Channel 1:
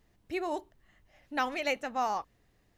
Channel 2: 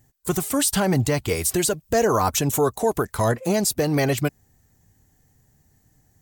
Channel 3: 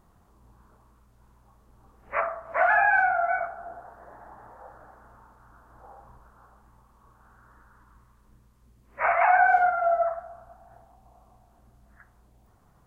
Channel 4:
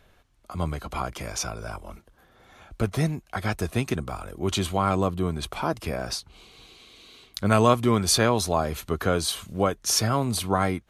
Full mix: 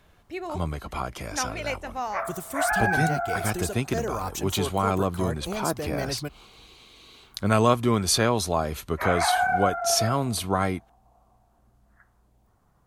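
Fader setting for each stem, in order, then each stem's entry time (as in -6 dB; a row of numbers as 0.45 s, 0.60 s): -0.5 dB, -11.0 dB, -4.0 dB, -1.0 dB; 0.00 s, 2.00 s, 0.00 s, 0.00 s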